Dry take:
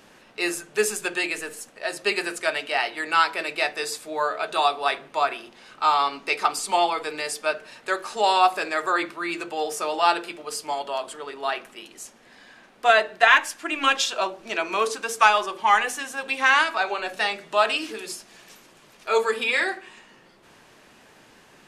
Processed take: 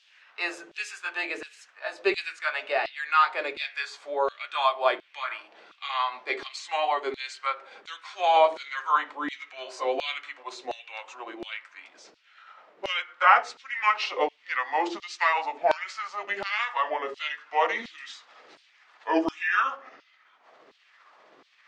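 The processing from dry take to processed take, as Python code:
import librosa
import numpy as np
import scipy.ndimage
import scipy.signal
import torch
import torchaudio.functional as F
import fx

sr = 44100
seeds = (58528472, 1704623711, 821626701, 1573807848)

y = fx.pitch_glide(x, sr, semitones=-6.5, runs='starting unshifted')
y = fx.air_absorb(y, sr, metres=150.0)
y = fx.filter_lfo_highpass(y, sr, shape='saw_down', hz=1.4, low_hz=320.0, high_hz=3800.0, q=1.7)
y = F.gain(torch.from_numpy(y), -1.5).numpy()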